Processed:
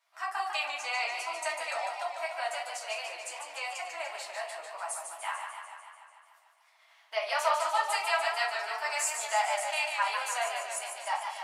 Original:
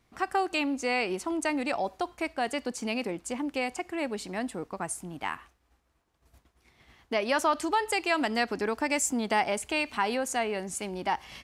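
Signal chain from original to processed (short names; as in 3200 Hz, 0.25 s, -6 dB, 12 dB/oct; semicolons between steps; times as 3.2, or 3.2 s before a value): steep high-pass 690 Hz 36 dB/oct; shoebox room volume 130 m³, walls furnished, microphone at 2.7 m; warbling echo 0.147 s, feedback 67%, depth 89 cents, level -6 dB; gain -7 dB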